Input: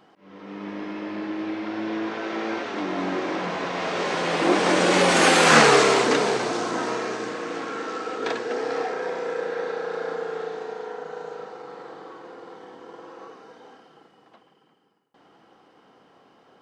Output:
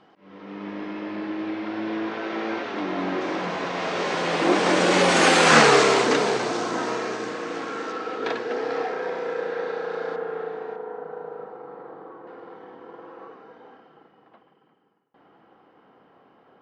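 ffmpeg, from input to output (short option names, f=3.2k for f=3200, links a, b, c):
-af "asetnsamples=n=441:p=0,asendcmd='3.21 lowpass f 9000;7.92 lowpass f 4700;10.16 lowpass f 2200;10.76 lowpass f 1300;12.27 lowpass f 2300',lowpass=5k"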